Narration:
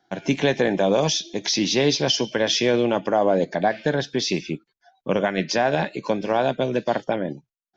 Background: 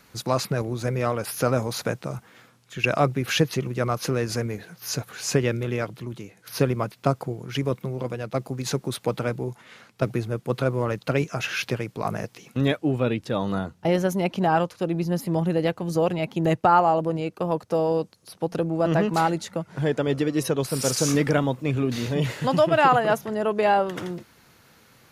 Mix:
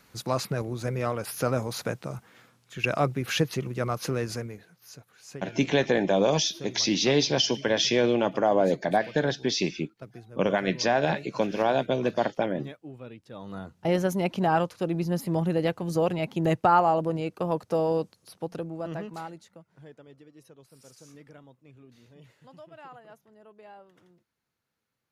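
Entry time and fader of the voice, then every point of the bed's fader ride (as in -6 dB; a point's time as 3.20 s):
5.30 s, -3.0 dB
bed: 4.25 s -4 dB
4.97 s -19.5 dB
13.24 s -19.5 dB
13.92 s -2.5 dB
18.08 s -2.5 dB
20.20 s -29 dB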